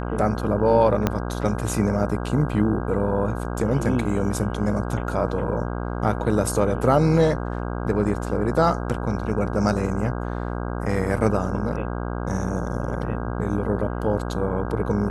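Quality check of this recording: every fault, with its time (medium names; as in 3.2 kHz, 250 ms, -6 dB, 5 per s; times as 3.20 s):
buzz 60 Hz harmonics 27 -28 dBFS
1.07 s: pop -7 dBFS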